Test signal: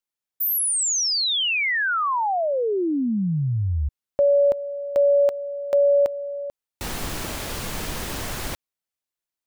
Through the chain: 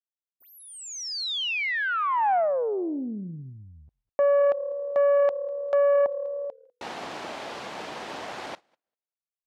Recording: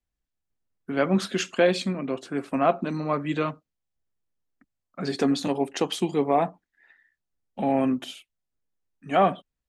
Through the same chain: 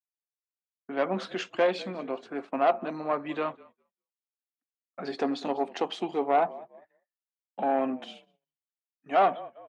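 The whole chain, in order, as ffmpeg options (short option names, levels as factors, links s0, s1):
-filter_complex "[0:a]equalizer=f=760:w=1.6:g=7,asplit=4[s0][s1][s2][s3];[s1]adelay=198,afreqshift=-37,volume=0.0891[s4];[s2]adelay=396,afreqshift=-74,volume=0.0367[s5];[s3]adelay=594,afreqshift=-111,volume=0.015[s6];[s0][s4][s5][s6]amix=inputs=4:normalize=0,aeval=exprs='0.596*(cos(1*acos(clip(val(0)/0.596,-1,1)))-cos(1*PI/2))+0.0668*(cos(4*acos(clip(val(0)/0.596,-1,1)))-cos(4*PI/2))+0.0422*(cos(5*acos(clip(val(0)/0.596,-1,1)))-cos(5*PI/2))':c=same,agate=range=0.0224:threshold=0.0112:ratio=3:release=72:detection=peak,highpass=270,lowpass=4100,volume=0.422"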